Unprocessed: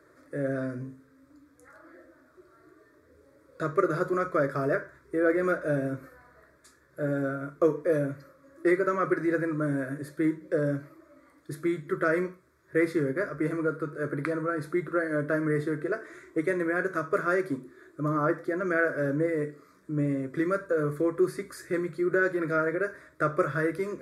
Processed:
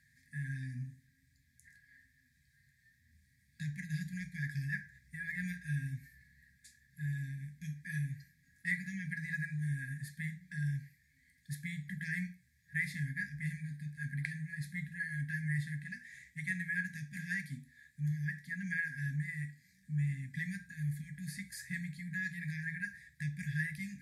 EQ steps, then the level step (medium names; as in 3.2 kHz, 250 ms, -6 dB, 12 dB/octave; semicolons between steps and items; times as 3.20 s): brick-wall FIR band-stop 240–1600 Hz; -1.5 dB